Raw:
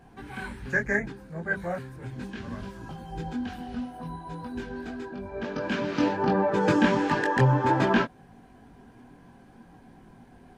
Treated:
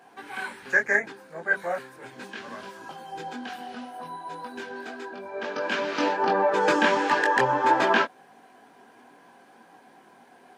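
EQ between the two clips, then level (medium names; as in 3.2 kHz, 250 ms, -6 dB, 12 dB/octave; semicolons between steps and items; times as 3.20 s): high-pass 490 Hz 12 dB/octave; +5.0 dB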